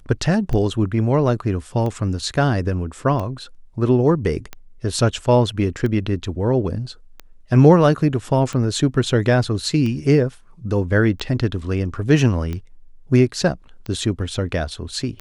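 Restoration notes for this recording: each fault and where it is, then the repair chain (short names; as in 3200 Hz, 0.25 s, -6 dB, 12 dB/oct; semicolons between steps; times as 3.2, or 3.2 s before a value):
tick 45 rpm -16 dBFS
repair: de-click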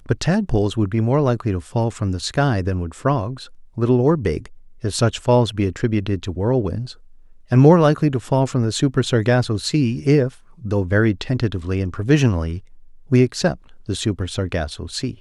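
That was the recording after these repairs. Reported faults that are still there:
none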